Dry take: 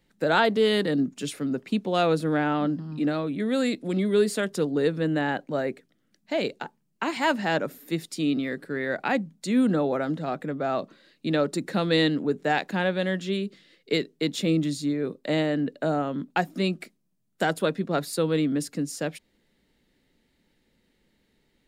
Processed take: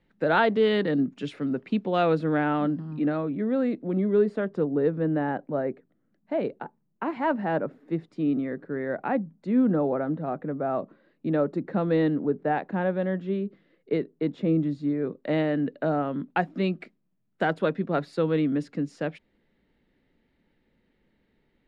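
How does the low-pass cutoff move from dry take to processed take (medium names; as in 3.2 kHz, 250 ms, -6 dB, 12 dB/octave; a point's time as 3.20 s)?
2.81 s 2.6 kHz
3.49 s 1.2 kHz
14.61 s 1.2 kHz
15.50 s 2.4 kHz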